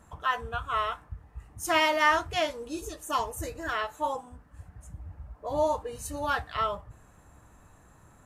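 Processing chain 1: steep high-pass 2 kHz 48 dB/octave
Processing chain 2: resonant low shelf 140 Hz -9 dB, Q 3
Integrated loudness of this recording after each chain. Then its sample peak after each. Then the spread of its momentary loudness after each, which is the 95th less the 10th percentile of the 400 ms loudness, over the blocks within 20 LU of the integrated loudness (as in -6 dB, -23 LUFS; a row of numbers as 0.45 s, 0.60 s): -36.5 LUFS, -29.0 LUFS; -17.5 dBFS, -9.5 dBFS; 21 LU, 13 LU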